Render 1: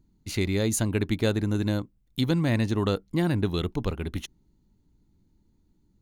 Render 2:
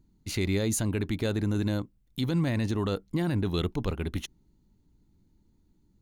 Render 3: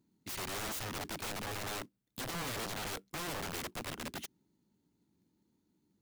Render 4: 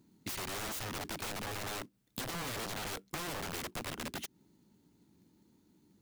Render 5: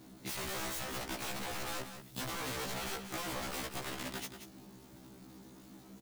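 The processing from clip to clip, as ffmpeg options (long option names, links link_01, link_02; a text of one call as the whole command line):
ffmpeg -i in.wav -af "alimiter=limit=-18.5dB:level=0:latency=1:release=20" out.wav
ffmpeg -i in.wav -af "highpass=190,acrusher=bits=4:mode=log:mix=0:aa=0.000001,aeval=exprs='(mod(33.5*val(0)+1,2)-1)/33.5':channel_layout=same,volume=-4dB" out.wav
ffmpeg -i in.wav -af "acompressor=threshold=-47dB:ratio=6,volume=9dB" out.wav
ffmpeg -i in.wav -af "aeval=exprs='val(0)+0.5*0.00355*sgn(val(0))':channel_layout=same,aecho=1:1:182:0.335,afftfilt=real='re*1.73*eq(mod(b,3),0)':imag='im*1.73*eq(mod(b,3),0)':win_size=2048:overlap=0.75,volume=1dB" out.wav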